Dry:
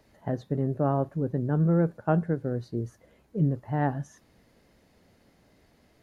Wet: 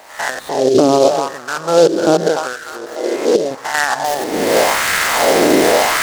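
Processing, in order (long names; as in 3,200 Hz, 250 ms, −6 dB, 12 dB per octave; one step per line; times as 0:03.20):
spectrum averaged block by block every 100 ms
camcorder AGC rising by 45 dB per second
0:02.53–0:03.51: bass and treble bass −15 dB, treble −15 dB
downward compressor 1.5 to 1, threshold −34 dBFS, peak gain reduction 5.5 dB
echo with a time of its own for lows and highs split 300 Hz, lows 91 ms, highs 298 ms, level −12 dB
auto-filter high-pass sine 0.86 Hz 330–1,500 Hz
boost into a limiter +24.5 dB
short delay modulated by noise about 4,600 Hz, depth 0.041 ms
level −1 dB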